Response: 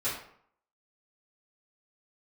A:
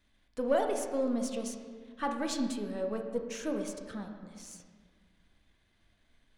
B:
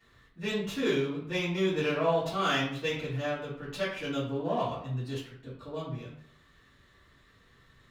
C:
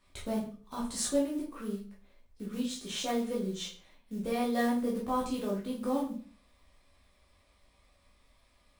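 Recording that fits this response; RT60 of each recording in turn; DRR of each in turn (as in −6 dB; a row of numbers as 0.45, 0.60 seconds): B; 1.7, 0.65, 0.45 seconds; 3.5, −12.5, −5.0 decibels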